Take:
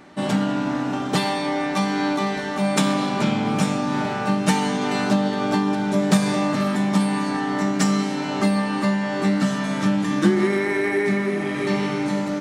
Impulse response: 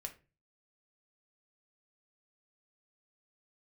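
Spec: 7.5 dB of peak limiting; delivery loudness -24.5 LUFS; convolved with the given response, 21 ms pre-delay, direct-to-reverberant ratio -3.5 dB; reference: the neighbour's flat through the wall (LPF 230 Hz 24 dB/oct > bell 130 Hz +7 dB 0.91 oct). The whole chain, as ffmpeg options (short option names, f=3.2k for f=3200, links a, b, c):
-filter_complex "[0:a]alimiter=limit=-13dB:level=0:latency=1,asplit=2[a][b];[1:a]atrim=start_sample=2205,adelay=21[c];[b][c]afir=irnorm=-1:irlink=0,volume=6.5dB[d];[a][d]amix=inputs=2:normalize=0,lowpass=f=230:w=0.5412,lowpass=f=230:w=1.3066,equalizer=f=130:t=o:w=0.91:g=7,volume=-4dB"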